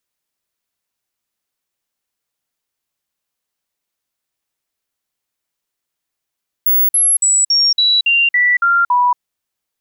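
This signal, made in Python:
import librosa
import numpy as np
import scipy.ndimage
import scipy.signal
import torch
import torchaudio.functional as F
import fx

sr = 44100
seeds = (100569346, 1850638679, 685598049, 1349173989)

y = fx.stepped_sweep(sr, from_hz=15700.0, direction='down', per_octave=2, tones=9, dwell_s=0.23, gap_s=0.05, level_db=-9.5)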